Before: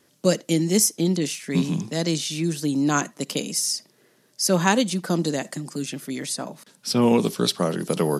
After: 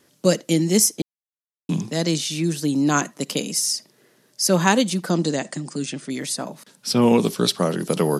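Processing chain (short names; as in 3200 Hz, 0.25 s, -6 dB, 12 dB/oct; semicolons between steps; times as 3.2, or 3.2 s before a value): 1.02–1.69 mute; 5.1–6.1 brick-wall FIR low-pass 10000 Hz; gain +2 dB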